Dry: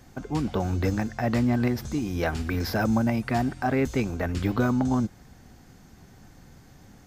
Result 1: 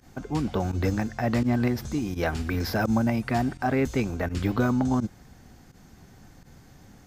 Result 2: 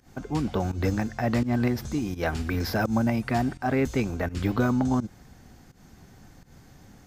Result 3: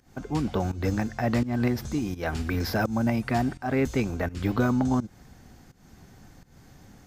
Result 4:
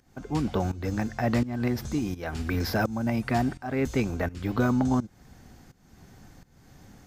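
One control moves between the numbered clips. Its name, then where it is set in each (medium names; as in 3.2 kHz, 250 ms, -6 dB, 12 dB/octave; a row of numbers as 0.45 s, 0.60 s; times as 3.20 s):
volume shaper, release: 64 ms, 148 ms, 256 ms, 471 ms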